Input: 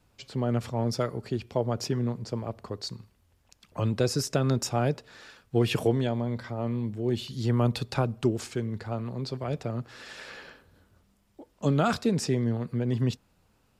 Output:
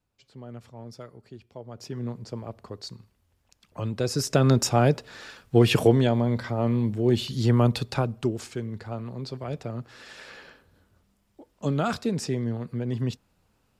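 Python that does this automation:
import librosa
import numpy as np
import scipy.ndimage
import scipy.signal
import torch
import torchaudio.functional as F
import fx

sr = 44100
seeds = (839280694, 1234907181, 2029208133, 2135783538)

y = fx.gain(x, sr, db=fx.line((1.66, -14.0), (2.06, -3.0), (3.95, -3.0), (4.42, 6.0), (7.36, 6.0), (8.33, -1.5)))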